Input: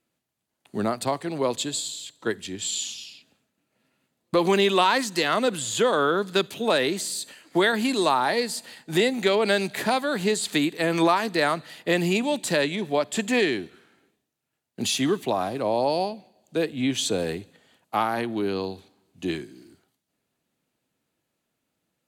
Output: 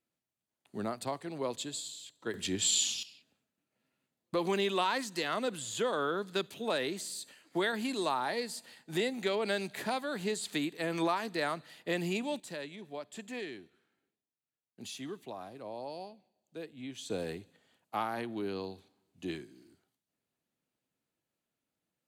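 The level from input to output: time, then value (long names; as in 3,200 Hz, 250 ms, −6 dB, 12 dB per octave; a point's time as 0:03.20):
−10.5 dB
from 0:02.34 +0.5 dB
from 0:03.03 −10.5 dB
from 0:12.40 −18.5 dB
from 0:17.10 −10 dB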